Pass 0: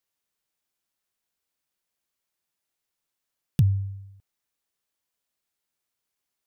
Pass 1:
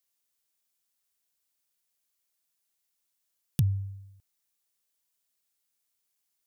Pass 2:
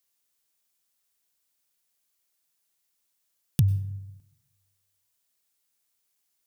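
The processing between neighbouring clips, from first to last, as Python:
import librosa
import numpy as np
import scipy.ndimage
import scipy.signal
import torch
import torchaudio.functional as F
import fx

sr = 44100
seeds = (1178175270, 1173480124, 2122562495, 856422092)

y1 = fx.high_shelf(x, sr, hz=3700.0, db=11.0)
y1 = F.gain(torch.from_numpy(y1), -5.0).numpy()
y2 = fx.rev_plate(y1, sr, seeds[0], rt60_s=1.1, hf_ratio=0.45, predelay_ms=85, drr_db=17.5)
y2 = F.gain(torch.from_numpy(y2), 3.5).numpy()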